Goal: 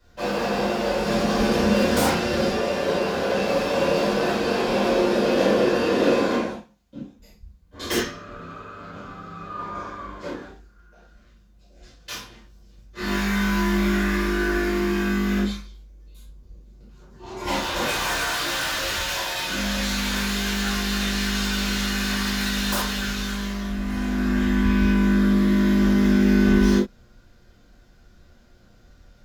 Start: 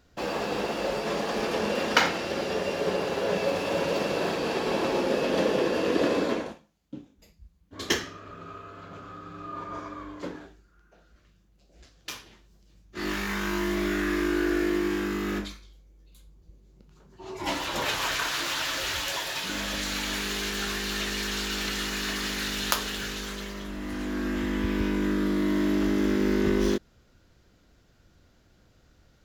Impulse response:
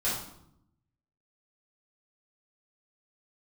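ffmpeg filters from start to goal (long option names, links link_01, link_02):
-filter_complex "[0:a]asettb=1/sr,asplit=3[link_01][link_02][link_03];[link_01]atrim=end=0.994[link_04];[link_02]atrim=start=0.99:end=2.51,asetpts=PTS-STARTPTS,afade=type=in:duration=0.004:curve=qsin,afade=type=out:start_time=1.516:duration=0.004:curve=qsin,bass=frequency=250:gain=8,treble=frequency=4000:gain=3[link_05];[link_03]atrim=start=2.506[link_06];[link_04][link_05]acrossfade=duration=0.004:curve1=hsin:curve2=qsin[link_07];[link_07][link_06]acrossfade=duration=0.004:curve1=qsin:curve2=hsin[link_08];[1:a]atrim=start_sample=2205,atrim=end_sample=3969[link_09];[link_08][link_09]afir=irnorm=-1:irlink=0,acrossover=split=350|920[link_10][link_11][link_12];[link_12]aeval=exprs='0.112*(abs(mod(val(0)/0.112+3,4)-2)-1)':channel_layout=same[link_13];[link_10][link_11][link_13]amix=inputs=3:normalize=0,volume=-2.5dB"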